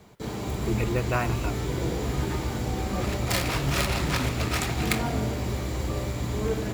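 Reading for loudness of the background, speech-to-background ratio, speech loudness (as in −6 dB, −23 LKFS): −28.5 LKFS, −2.0 dB, −30.5 LKFS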